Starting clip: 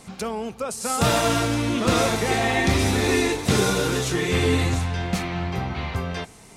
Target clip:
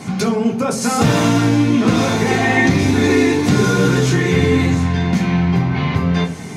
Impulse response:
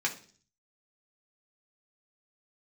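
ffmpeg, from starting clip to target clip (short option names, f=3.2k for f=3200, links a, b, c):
-filter_complex "[0:a]equalizer=f=170:t=o:w=2.7:g=11.5,acompressor=threshold=-27dB:ratio=2.5[a];[1:a]atrim=start_sample=2205,asetrate=41013,aresample=44100[b];[a][b]afir=irnorm=-1:irlink=0,volume=6dB"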